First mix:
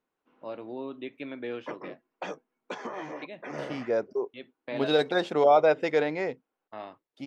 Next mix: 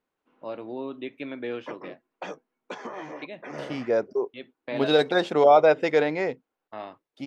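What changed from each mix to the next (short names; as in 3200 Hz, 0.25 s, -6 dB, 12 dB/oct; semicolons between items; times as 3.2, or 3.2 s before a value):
first voice +3.0 dB; second voice +3.5 dB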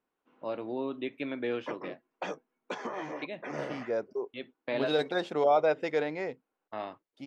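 second voice -8.0 dB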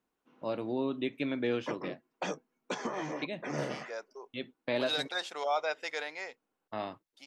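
second voice: add HPF 960 Hz 12 dB/oct; master: add tone controls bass +7 dB, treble +10 dB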